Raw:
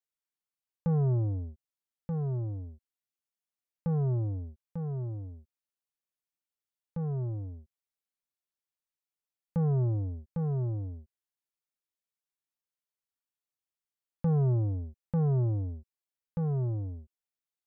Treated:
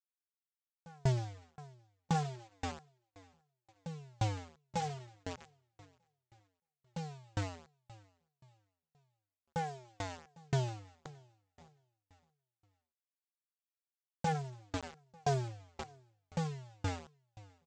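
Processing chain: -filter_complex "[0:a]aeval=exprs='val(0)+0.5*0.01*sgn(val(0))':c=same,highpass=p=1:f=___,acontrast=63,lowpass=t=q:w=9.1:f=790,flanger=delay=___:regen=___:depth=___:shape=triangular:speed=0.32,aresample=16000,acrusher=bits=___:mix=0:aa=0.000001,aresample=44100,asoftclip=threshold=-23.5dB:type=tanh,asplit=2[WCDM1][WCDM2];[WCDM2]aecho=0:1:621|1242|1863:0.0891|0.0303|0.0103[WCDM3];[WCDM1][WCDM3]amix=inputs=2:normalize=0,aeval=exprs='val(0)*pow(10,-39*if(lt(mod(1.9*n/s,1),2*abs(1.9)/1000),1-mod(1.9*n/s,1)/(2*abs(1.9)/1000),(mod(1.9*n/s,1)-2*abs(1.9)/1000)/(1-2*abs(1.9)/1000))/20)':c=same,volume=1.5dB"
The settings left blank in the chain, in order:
110, 1.2, -29, 8.8, 5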